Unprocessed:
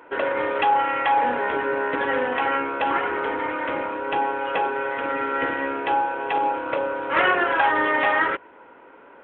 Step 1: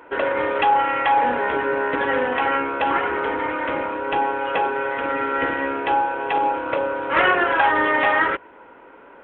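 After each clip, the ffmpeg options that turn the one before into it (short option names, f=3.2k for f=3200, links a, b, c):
-af "lowshelf=f=65:g=9,volume=2dB"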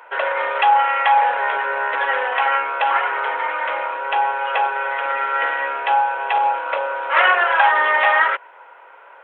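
-af "highpass=f=610:w=0.5412,highpass=f=610:w=1.3066,volume=3.5dB"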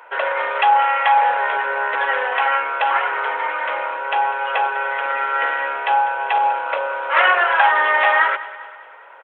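-af "aecho=1:1:199|398|597|796|995:0.141|0.0749|0.0397|0.021|0.0111"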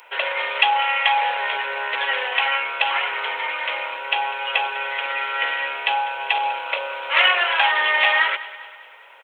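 -af "aexciter=amount=7.6:drive=1.2:freq=2.2k,volume=-6dB"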